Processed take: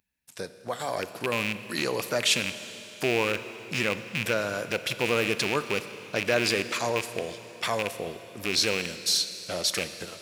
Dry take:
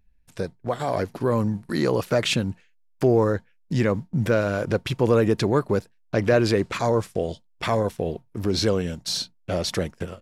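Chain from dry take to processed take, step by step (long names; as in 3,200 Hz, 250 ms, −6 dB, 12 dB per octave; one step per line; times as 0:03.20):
loose part that buzzes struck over −22 dBFS, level −16 dBFS
high-pass filter 82 Hz
spectral tilt +3 dB per octave
four-comb reverb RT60 3.5 s, combs from 26 ms, DRR 11 dB
level −4 dB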